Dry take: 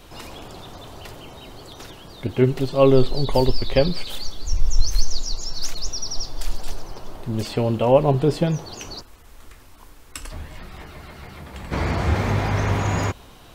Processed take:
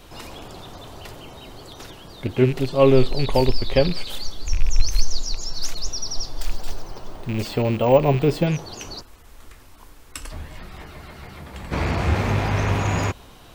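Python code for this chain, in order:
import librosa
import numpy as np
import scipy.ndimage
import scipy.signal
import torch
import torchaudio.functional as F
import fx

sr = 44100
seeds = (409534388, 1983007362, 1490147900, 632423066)

y = fx.rattle_buzz(x, sr, strikes_db=-24.0, level_db=-24.0)
y = fx.resample_bad(y, sr, factor=2, down='filtered', up='hold', at=(6.4, 8.47))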